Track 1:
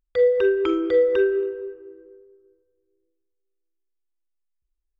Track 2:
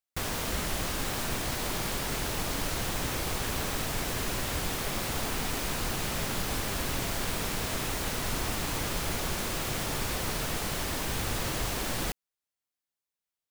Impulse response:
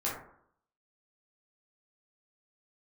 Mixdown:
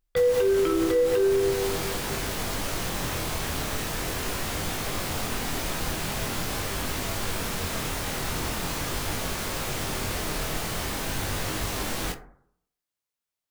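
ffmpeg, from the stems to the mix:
-filter_complex "[0:a]volume=-3dB,asplit=2[link_01][link_02];[link_02]volume=-3.5dB[link_03];[1:a]flanger=delay=19.5:depth=6.5:speed=0.43,volume=3dB,asplit=2[link_04][link_05];[link_05]volume=-12.5dB[link_06];[2:a]atrim=start_sample=2205[link_07];[link_03][link_06]amix=inputs=2:normalize=0[link_08];[link_08][link_07]afir=irnorm=-1:irlink=0[link_09];[link_01][link_04][link_09]amix=inputs=3:normalize=0,alimiter=limit=-15.5dB:level=0:latency=1:release=143"

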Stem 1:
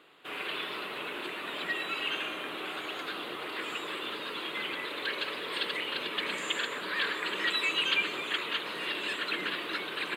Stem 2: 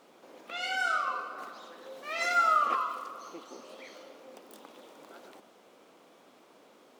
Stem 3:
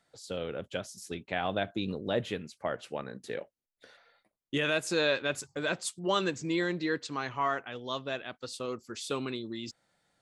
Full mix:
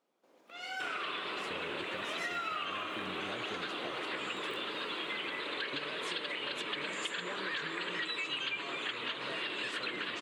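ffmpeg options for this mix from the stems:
ffmpeg -i stem1.wav -i stem2.wav -i stem3.wav -filter_complex "[0:a]lowpass=frequency=8500:width=0.5412,lowpass=frequency=8500:width=1.3066,adelay=550,volume=2.5dB[link_01];[1:a]agate=range=-7dB:threshold=-56dB:ratio=16:detection=peak,dynaudnorm=framelen=130:gausssize=11:maxgain=11dB,volume=-14.5dB[link_02];[2:a]acompressor=threshold=-33dB:ratio=6,adelay=1200,volume=-4.5dB[link_03];[link_01][link_02][link_03]amix=inputs=3:normalize=0,acompressor=threshold=-35dB:ratio=5" out.wav

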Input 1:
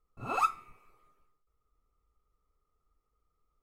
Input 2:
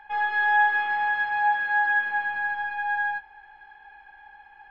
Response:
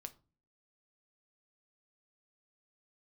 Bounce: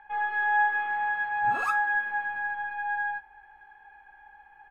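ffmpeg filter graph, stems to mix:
-filter_complex "[0:a]adelay=1250,volume=-2.5dB[link_01];[1:a]lowpass=2300,volume=-3dB[link_02];[link_01][link_02]amix=inputs=2:normalize=0"

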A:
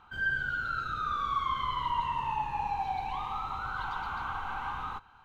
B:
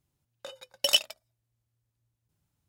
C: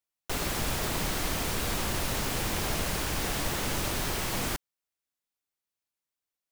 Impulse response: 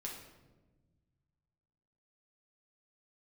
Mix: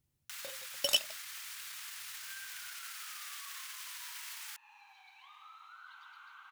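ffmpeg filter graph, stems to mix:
-filter_complex "[0:a]adelay=2100,volume=-12dB[link_01];[1:a]lowshelf=frequency=300:gain=6.5,volume=-7dB[link_02];[2:a]highshelf=frequency=11000:gain=-5.5,alimiter=level_in=3.5dB:limit=-24dB:level=0:latency=1,volume=-3.5dB,volume=0.5dB[link_03];[link_01][link_03]amix=inputs=2:normalize=0,highpass=frequency=1400:width=0.5412,highpass=frequency=1400:width=1.3066,acompressor=threshold=-50dB:ratio=2,volume=0dB[link_04];[link_02][link_04]amix=inputs=2:normalize=0,highshelf=frequency=9000:gain=6"

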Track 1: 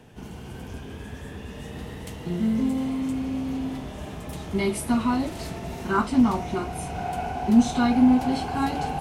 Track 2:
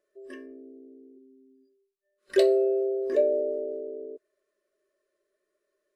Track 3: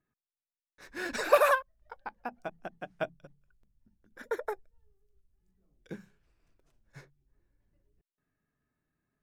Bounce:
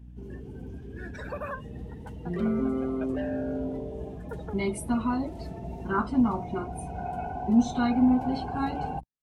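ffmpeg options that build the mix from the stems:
ffmpeg -i stem1.wav -i stem2.wav -i stem3.wav -filter_complex "[0:a]aeval=exprs='val(0)+0.01*(sin(2*PI*60*n/s)+sin(2*PI*2*60*n/s)/2+sin(2*PI*3*60*n/s)/3+sin(2*PI*4*60*n/s)/4+sin(2*PI*5*60*n/s)/5)':channel_layout=same,volume=-4dB[link_01];[1:a]dynaudnorm=framelen=120:gausssize=3:maxgain=12dB,asoftclip=type=hard:threshold=-18dB,volume=-15dB[link_02];[2:a]alimiter=limit=-19dB:level=0:latency=1:release=266,volume=-6.5dB[link_03];[link_01][link_02][link_03]amix=inputs=3:normalize=0,afftdn=noise_reduction=16:noise_floor=-40" out.wav

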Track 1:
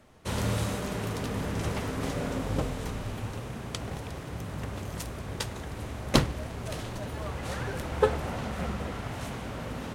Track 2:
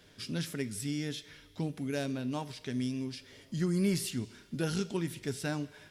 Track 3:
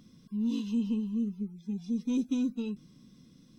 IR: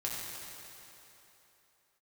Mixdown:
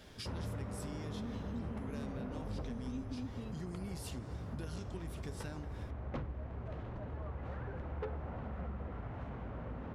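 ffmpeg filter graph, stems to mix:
-filter_complex "[0:a]lowpass=1500,asoftclip=type=tanh:threshold=-21.5dB,volume=-2dB[link_01];[1:a]acompressor=threshold=-39dB:ratio=2.5,volume=1dB[link_02];[2:a]adelay=800,volume=-5dB[link_03];[link_01][link_02][link_03]amix=inputs=3:normalize=0,equalizer=frequency=61:width_type=o:width=1.1:gain=7,acompressor=threshold=-43dB:ratio=2.5"

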